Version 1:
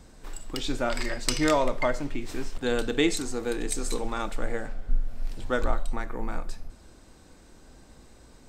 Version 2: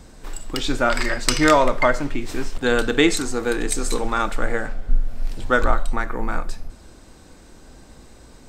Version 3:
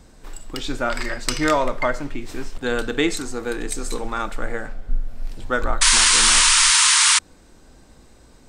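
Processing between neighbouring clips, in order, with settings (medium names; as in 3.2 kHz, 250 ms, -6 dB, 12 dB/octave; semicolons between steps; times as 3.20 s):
dynamic bell 1.4 kHz, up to +6 dB, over -45 dBFS, Q 1.5; trim +6.5 dB
painted sound noise, 5.81–7.19 s, 880–10000 Hz -11 dBFS; trim -4 dB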